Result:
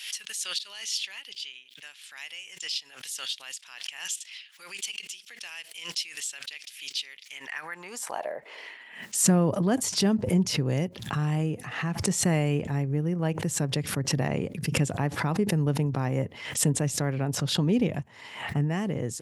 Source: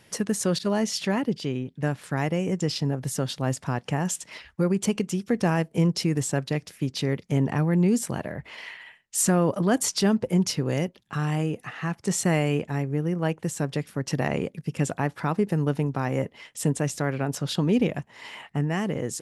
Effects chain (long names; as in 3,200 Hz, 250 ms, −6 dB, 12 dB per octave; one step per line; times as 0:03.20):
high-pass filter sweep 3,000 Hz → 92 Hz, 0:07.23–0:09.56
dynamic equaliser 1,400 Hz, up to −3 dB, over −44 dBFS, Q 2.5
background raised ahead of every attack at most 79 dB per second
level −3.5 dB